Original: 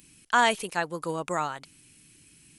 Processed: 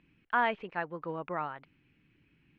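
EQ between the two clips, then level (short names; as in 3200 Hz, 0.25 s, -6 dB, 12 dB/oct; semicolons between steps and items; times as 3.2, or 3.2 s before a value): LPF 2500 Hz 24 dB/oct; -6.0 dB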